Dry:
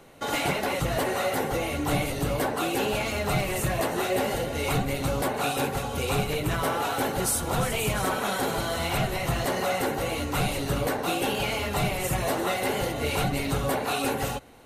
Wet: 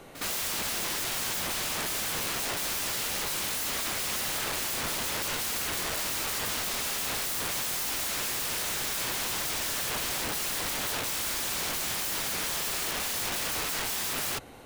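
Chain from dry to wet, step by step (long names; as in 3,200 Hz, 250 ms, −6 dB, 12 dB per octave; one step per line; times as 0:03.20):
wrap-around overflow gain 30 dB
echo ahead of the sound 63 ms −12.5 dB
level +3 dB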